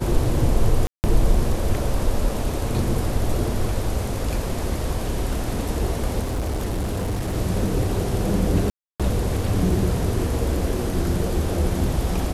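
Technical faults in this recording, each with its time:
0:00.87–0:01.04: drop-out 169 ms
0:06.22–0:07.36: clipping −21 dBFS
0:08.70–0:09.00: drop-out 296 ms

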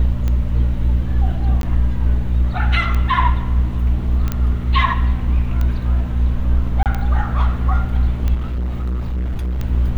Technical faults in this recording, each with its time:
mains hum 60 Hz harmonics 4 −21 dBFS
scratch tick 45 rpm −11 dBFS
0:01.62–0:01.63: drop-out 12 ms
0:04.32: click −8 dBFS
0:06.83–0:06.86: drop-out 28 ms
0:08.34–0:09.59: clipping −18.5 dBFS

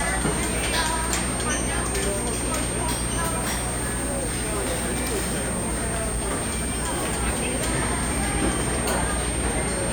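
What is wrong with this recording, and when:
mains hum 60 Hz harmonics 7 −31 dBFS
whistle 8,700 Hz −29 dBFS
0:03.39–0:07.23: clipping −21.5 dBFS

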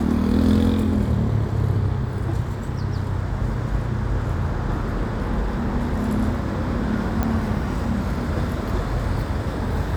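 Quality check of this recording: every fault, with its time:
0:07.23: click −10 dBFS

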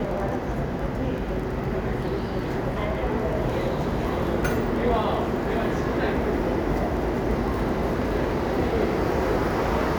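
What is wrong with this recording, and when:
surface crackle 17 per second −32 dBFS

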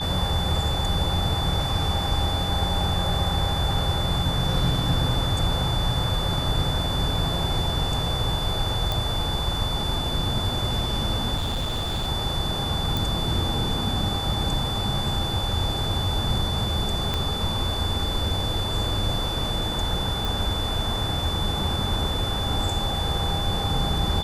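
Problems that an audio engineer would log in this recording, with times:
whistle 3,500 Hz −29 dBFS
0:08.92: click
0:11.36–0:12.08: clipping −22.5 dBFS
0:12.97: click
0:17.14: click −12 dBFS
0:20.25: click

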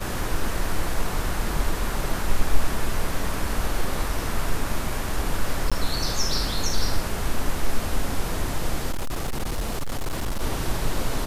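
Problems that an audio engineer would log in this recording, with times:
0:05.70–0:05.72: drop-out 16 ms
0:08.91–0:10.42: clipping −22 dBFS

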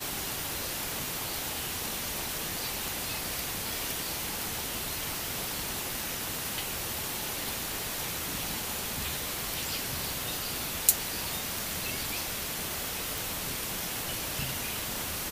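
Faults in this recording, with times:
0:13.18: click

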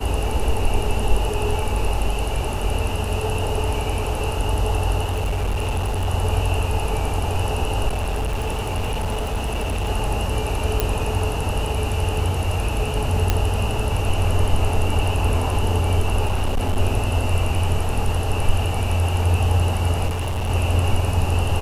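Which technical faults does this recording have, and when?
0:05.04–0:06.09: clipping −18.5 dBFS
0:07.88–0:09.90: clipping −19.5 dBFS
0:10.80: click
0:13.30: click −4 dBFS
0:16.25–0:16.79: clipping −16 dBFS
0:20.07–0:20.50: clipping −20.5 dBFS

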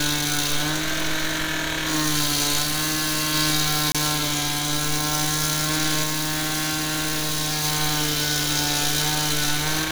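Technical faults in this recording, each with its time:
0:02.62–0:03.35: clipping −20.5 dBFS
0:03.92–0:03.95: drop-out 26 ms
0:06.03–0:07.65: clipping −21 dBFS

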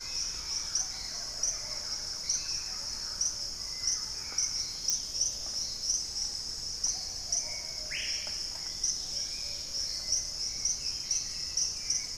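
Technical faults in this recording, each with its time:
0:04.90: click −14 dBFS

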